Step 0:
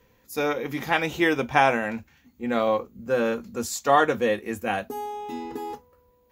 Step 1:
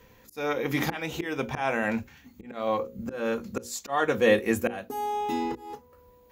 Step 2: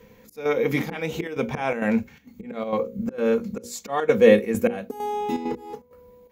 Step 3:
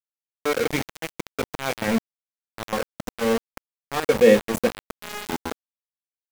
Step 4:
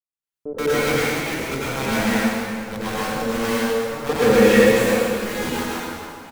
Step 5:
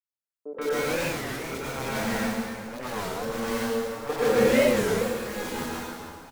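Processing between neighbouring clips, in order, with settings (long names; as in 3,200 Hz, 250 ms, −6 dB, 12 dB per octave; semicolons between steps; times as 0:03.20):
volume swells 513 ms; mains-hum notches 60/120/180/240/300/360/420/480/540 Hz; level +6 dB
hollow resonant body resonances 200/460/2,200 Hz, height 10 dB, ringing for 35 ms; square-wave tremolo 2.2 Hz, depth 60%, duty 80%
mains-hum notches 50/100/150 Hz; centre clipping without the shift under −21.5 dBFS
multiband delay without the direct sound lows, highs 130 ms, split 540 Hz; dense smooth reverb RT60 2.5 s, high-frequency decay 0.8×, pre-delay 80 ms, DRR −9.5 dB; level −3 dB
three-band delay without the direct sound mids, highs, lows 30/130 ms, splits 240/2,500 Hz; wow of a warped record 33 1/3 rpm, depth 250 cents; level −6 dB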